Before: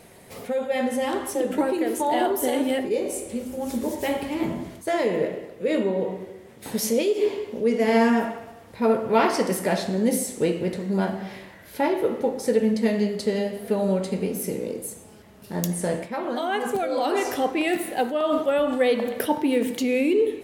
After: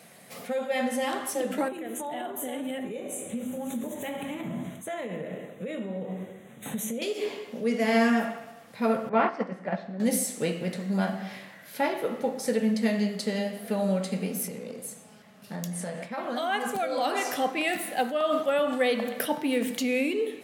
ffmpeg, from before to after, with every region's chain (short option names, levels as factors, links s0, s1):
-filter_complex "[0:a]asettb=1/sr,asplit=3[s0][s1][s2];[s0]atrim=end=1.684[s3];[s1]atrim=start=1.68:end=7.02,asetpts=PTS-STARTPTS,afade=t=in:d=0.004:c=qsin,afade=t=out:st=5.336:d=0.004:c=qsin,asuperstop=centerf=4900:order=8:qfactor=2.2,acompressor=threshold=0.0355:ratio=6:attack=3.2:release=140:knee=1:detection=peak,lowshelf=f=250:g=9.5[s4];[s2]atrim=start=7.016[s5];[s3][s4]acrossfade=d=0.004:c1=hsin:c2=qsin[s6];[s6][s5]acrossfade=d=0.004:c1=qsin:c2=hsin,asettb=1/sr,asplit=3[s7][s8][s9];[s7]atrim=end=9.094[s10];[s8]atrim=start=9.09:end=10,asetpts=PTS-STARTPTS,afade=t=in:d=0.004:c=qsin,afade=t=out:st=0.906:d=0.004:c=qsin,lowpass=1800,agate=range=0.398:threshold=0.0794:ratio=16:release=100:detection=peak[s11];[s9]atrim=start=9.996[s12];[s10][s11]acrossfade=d=0.004:c1=hsin:c2=qsin[s13];[s13][s12]acrossfade=d=0.004:c1=qsin:c2=hsin,asettb=1/sr,asplit=3[s14][s15][s16];[s14]atrim=end=14.474[s17];[s15]atrim=start=14.47:end=16.18,asetpts=PTS-STARTPTS,afade=t=in:d=0.004:c=qsin,afade=t=out:st=1.706:d=0.004:c=qsin,highshelf=f=9300:g=-8,acompressor=threshold=0.0447:ratio=6:attack=3.2:release=140:knee=1:detection=peak,bandreject=f=320:w=8.3[s18];[s16]atrim=start=16.176[s19];[s17][s18]acrossfade=d=0.004:c1=hsin:c2=qsin[s20];[s20][s19]acrossfade=d=0.004:c1=qsin:c2=hsin,highpass=f=150:w=0.5412,highpass=f=150:w=1.3066,equalizer=f=370:t=o:w=0.74:g=-11.5,bandreject=f=930:w=8.7"